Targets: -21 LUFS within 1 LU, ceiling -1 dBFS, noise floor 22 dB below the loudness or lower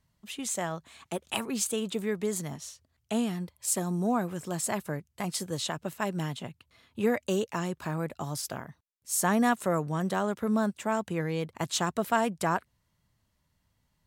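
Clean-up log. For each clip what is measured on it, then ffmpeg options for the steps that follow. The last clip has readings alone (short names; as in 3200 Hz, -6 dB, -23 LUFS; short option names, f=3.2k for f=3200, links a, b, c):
loudness -30.5 LUFS; peak -13.0 dBFS; loudness target -21.0 LUFS
-> -af "volume=9.5dB"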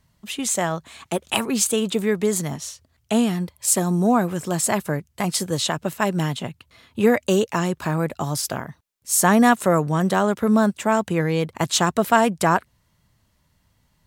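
loudness -21.0 LUFS; peak -3.5 dBFS; noise floor -66 dBFS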